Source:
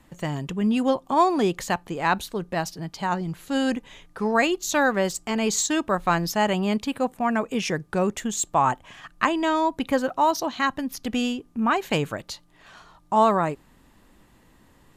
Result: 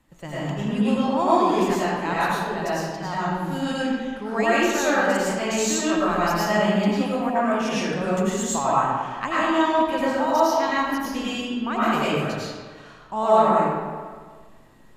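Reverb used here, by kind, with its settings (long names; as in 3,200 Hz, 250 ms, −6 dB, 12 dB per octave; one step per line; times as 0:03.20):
comb and all-pass reverb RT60 1.6 s, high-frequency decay 0.65×, pre-delay 65 ms, DRR −9.5 dB
level −8 dB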